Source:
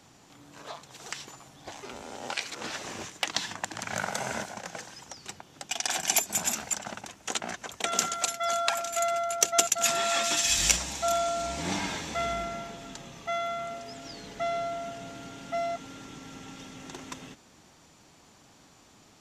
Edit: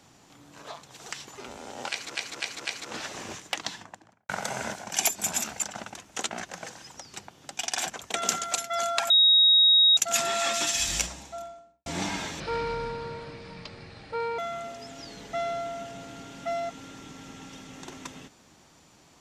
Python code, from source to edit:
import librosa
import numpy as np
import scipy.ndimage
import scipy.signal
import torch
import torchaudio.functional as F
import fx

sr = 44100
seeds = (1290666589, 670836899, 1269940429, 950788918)

y = fx.studio_fade_out(x, sr, start_s=3.12, length_s=0.87)
y = fx.studio_fade_out(y, sr, start_s=10.31, length_s=1.25)
y = fx.edit(y, sr, fx.cut(start_s=1.35, length_s=0.45),
    fx.repeat(start_s=2.35, length_s=0.25, count=4),
    fx.move(start_s=4.61, length_s=1.41, to_s=7.6),
    fx.bleep(start_s=8.8, length_s=0.87, hz=3780.0, db=-15.0),
    fx.speed_span(start_s=12.1, length_s=1.35, speed=0.68), tone=tone)